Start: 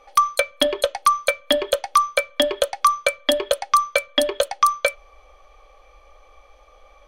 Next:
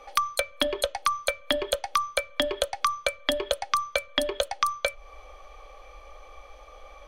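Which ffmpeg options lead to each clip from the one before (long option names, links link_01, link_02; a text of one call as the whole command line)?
ffmpeg -i in.wav -filter_complex "[0:a]acrossover=split=160[link_01][link_02];[link_02]acompressor=threshold=-27dB:ratio=5[link_03];[link_01][link_03]amix=inputs=2:normalize=0,volume=3.5dB" out.wav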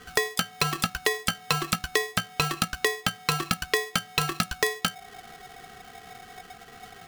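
ffmpeg -i in.wav -af "aeval=exprs='val(0)*sgn(sin(2*PI*740*n/s))':channel_layout=same" out.wav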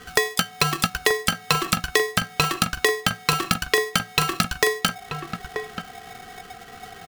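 ffmpeg -i in.wav -filter_complex "[0:a]asplit=2[link_01][link_02];[link_02]adelay=932.9,volume=-7dB,highshelf=frequency=4000:gain=-21[link_03];[link_01][link_03]amix=inputs=2:normalize=0,volume=4.5dB" out.wav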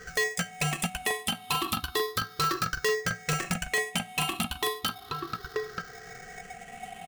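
ffmpeg -i in.wav -af "afftfilt=real='re*pow(10,13/40*sin(2*PI*(0.55*log(max(b,1)*sr/1024/100)/log(2)-(0.33)*(pts-256)/sr)))':imag='im*pow(10,13/40*sin(2*PI*(0.55*log(max(b,1)*sr/1024/100)/log(2)-(0.33)*(pts-256)/sr)))':win_size=1024:overlap=0.75,volume=17.5dB,asoftclip=hard,volume=-17.5dB,volume=-5.5dB" out.wav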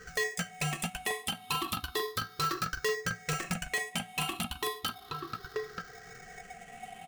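ffmpeg -i in.wav -af "flanger=delay=0.7:depth=7.5:regen=-63:speed=0.65:shape=sinusoidal" out.wav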